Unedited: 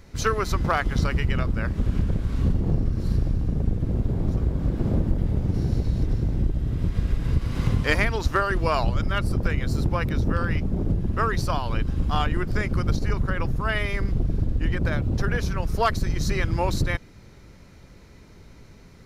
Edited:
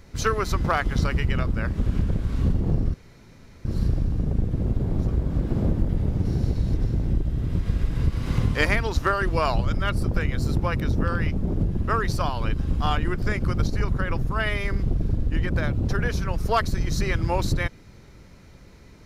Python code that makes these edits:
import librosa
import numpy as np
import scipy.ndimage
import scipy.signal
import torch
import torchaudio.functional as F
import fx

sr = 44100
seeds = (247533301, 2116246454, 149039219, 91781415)

y = fx.edit(x, sr, fx.insert_room_tone(at_s=2.94, length_s=0.71), tone=tone)